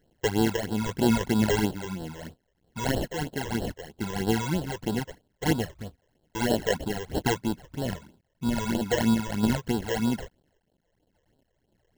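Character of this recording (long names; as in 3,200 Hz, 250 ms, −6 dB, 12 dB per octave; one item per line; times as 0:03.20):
a quantiser's noise floor 12 bits, dither triangular
sample-and-hold tremolo
aliases and images of a low sample rate 1,200 Hz, jitter 0%
phaser sweep stages 12, 3.1 Hz, lowest notch 230–2,200 Hz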